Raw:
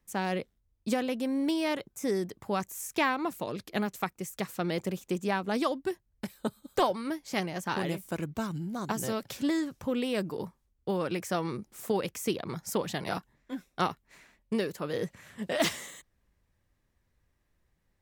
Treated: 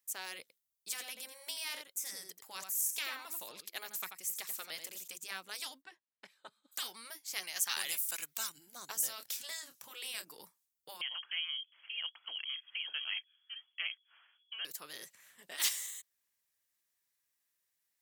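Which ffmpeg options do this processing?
-filter_complex "[0:a]asettb=1/sr,asplit=3[s0][s1][s2];[s0]atrim=end=0.414[s3];[s1]atrim=start=0.41:end=5.08,asetpts=PTS-STARTPTS,afade=t=in:d=0.004:c=qsin,afade=t=out:st=4.666:d=0.004:c=qsin,aecho=1:1:86:0.335,atrim=end_sample=205947[s4];[s2]atrim=start=5.076[s5];[s3][s4]acrossfade=d=0.004:c1=hsin:c2=qsin[s6];[s6][s5]acrossfade=d=0.004:c1=qsin:c2=hsin,asplit=3[s7][s8][s9];[s7]afade=t=out:st=5.81:d=0.02[s10];[s8]highpass=150,lowpass=2500,afade=t=in:st=5.81:d=0.02,afade=t=out:st=6.71:d=0.02[s11];[s9]afade=t=in:st=6.71:d=0.02[s12];[s10][s11][s12]amix=inputs=3:normalize=0,asettb=1/sr,asplit=3[s13][s14][s15];[s13]atrim=end=7.434[s16];[s14]atrim=start=7.43:end=8.5,asetpts=PTS-STARTPTS,afade=t=in:d=0.004:c=qsin,afade=t=out:st=1.066:d=0.004:c=qsin,tiltshelf=f=710:g=-8.5[s17];[s15]atrim=start=8.496[s18];[s16][s17]acrossfade=d=0.004:c1=hsin:c2=qsin[s19];[s19][s18]acrossfade=d=0.004:c1=qsin:c2=hsin,asettb=1/sr,asplit=3[s20][s21][s22];[s20]atrim=end=9.154[s23];[s21]atrim=start=9.15:end=10.32,asetpts=PTS-STARTPTS,afade=t=in:d=0.004:c=qsin,afade=t=out:st=1.166:d=0.004:c=qsin,asplit=2[s24][s25];[s25]adelay=28,volume=0.316[s26];[s24][s26]amix=inputs=2:normalize=0,atrim=end_sample=51597[s27];[s22]atrim=start=10.316[s28];[s23][s27]acrossfade=d=0.004:c1=hsin:c2=qsin[s29];[s29][s28]acrossfade=d=0.004:c1=qsin:c2=hsin,asettb=1/sr,asplit=3[s30][s31][s32];[s30]atrim=end=11.014[s33];[s31]atrim=start=11.01:end=14.65,asetpts=PTS-STARTPTS,afade=t=in:d=0.004:c=qsin,afade=t=out:st=3.636:d=0.004:c=qsin,lowpass=f=2900:t=q:w=0.5098,lowpass=f=2900:t=q:w=0.6013,lowpass=f=2900:t=q:w=0.9,lowpass=f=2900:t=q:w=2.563,afreqshift=-3400[s34];[s32]atrim=start=14.646[s35];[s33][s34]acrossfade=d=0.004:c1=hsin:c2=qsin[s36];[s36][s35]acrossfade=d=0.004:c1=qsin:c2=hsin,asettb=1/sr,asplit=3[s37][s38][s39];[s37]atrim=end=15.164[s40];[s38]atrim=start=15.16:end=15.58,asetpts=PTS-STARTPTS,afade=t=in:d=0.004:c=qsin,afade=t=out:st=0.416:d=0.004:c=qsin,equalizer=f=7500:w=0.31:g=-8[s41];[s39]atrim=start=15.576[s42];[s40][s41]acrossfade=d=0.004:c1=hsin:c2=qsin[s43];[s43][s42]acrossfade=d=0.004:c1=qsin:c2=hsin,afftfilt=real='re*lt(hypot(re,im),0.2)':imag='im*lt(hypot(re,im),0.2)':win_size=1024:overlap=0.75,aderivative,volume=1.58"

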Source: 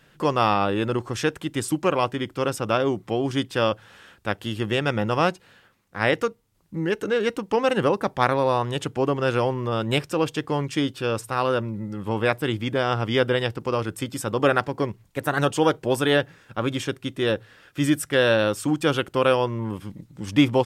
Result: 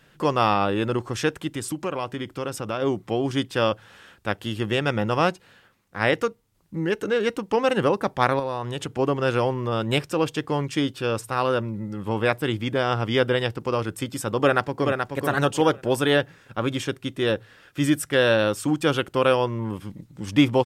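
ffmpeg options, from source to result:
-filter_complex "[0:a]asplit=3[s0][s1][s2];[s0]afade=t=out:st=1.49:d=0.02[s3];[s1]acompressor=threshold=0.0398:ratio=2:attack=3.2:release=140:knee=1:detection=peak,afade=t=in:st=1.49:d=0.02,afade=t=out:st=2.81:d=0.02[s4];[s2]afade=t=in:st=2.81:d=0.02[s5];[s3][s4][s5]amix=inputs=3:normalize=0,asettb=1/sr,asplit=3[s6][s7][s8];[s6]atrim=end=8.394[s9];[s7]atrim=start=8.39:end=8.99,asetpts=PTS-STARTPTS,afade=t=in:d=0.004:c=qsin,afade=t=out:st=0.596:d=0.004:c=qsin,acompressor=threshold=0.0562:ratio=3:attack=3.2:release=140:knee=1:detection=peak[s10];[s8]atrim=start=8.986[s11];[s9][s10]acrossfade=d=0.004:c1=hsin:c2=qsin[s12];[s12][s11]acrossfade=d=0.004:c1=qsin:c2=hsin,asplit=2[s13][s14];[s14]afade=t=in:st=14.42:d=0.01,afade=t=out:st=15.18:d=0.01,aecho=0:1:430|860|1290:0.562341|0.140585|0.0351463[s15];[s13][s15]amix=inputs=2:normalize=0"

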